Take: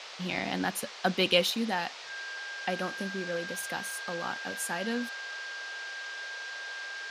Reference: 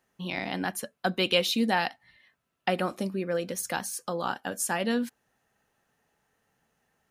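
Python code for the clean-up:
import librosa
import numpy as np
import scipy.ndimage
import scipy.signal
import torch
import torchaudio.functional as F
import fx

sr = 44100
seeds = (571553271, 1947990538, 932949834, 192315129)

y = fx.notch(x, sr, hz=1600.0, q=30.0)
y = fx.noise_reduce(y, sr, print_start_s=1.88, print_end_s=2.38, reduce_db=30.0)
y = fx.gain(y, sr, db=fx.steps((0.0, 0.0), (1.5, 5.5)))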